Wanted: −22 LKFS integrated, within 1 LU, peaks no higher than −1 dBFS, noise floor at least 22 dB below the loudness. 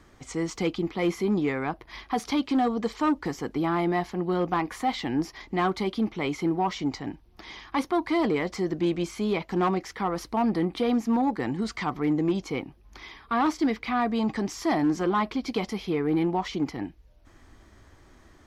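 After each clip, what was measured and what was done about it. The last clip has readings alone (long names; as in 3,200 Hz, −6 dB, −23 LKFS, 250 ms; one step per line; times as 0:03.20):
share of clipped samples 0.3%; peaks flattened at −17.5 dBFS; integrated loudness −27.5 LKFS; sample peak −17.5 dBFS; target loudness −22.0 LKFS
→ clipped peaks rebuilt −17.5 dBFS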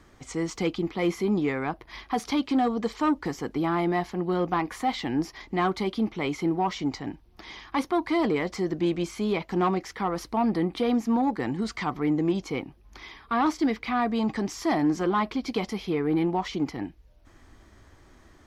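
share of clipped samples 0.0%; integrated loudness −27.5 LKFS; sample peak −14.5 dBFS; target loudness −22.0 LKFS
→ level +5.5 dB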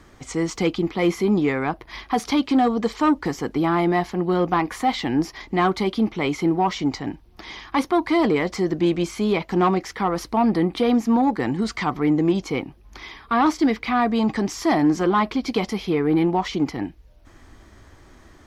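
integrated loudness −22.0 LKFS; sample peak −9.0 dBFS; background noise floor −50 dBFS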